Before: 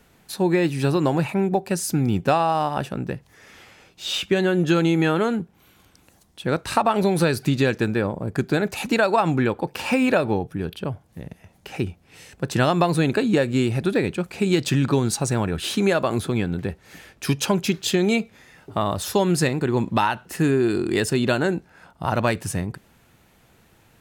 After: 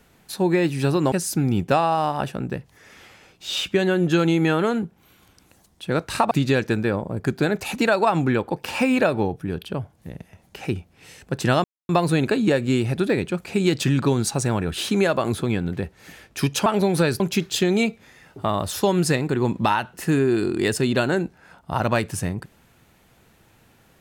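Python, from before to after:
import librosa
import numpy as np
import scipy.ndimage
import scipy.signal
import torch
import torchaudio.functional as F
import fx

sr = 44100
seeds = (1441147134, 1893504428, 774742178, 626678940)

y = fx.edit(x, sr, fx.cut(start_s=1.12, length_s=0.57),
    fx.move(start_s=6.88, length_s=0.54, to_s=17.52),
    fx.insert_silence(at_s=12.75, length_s=0.25), tone=tone)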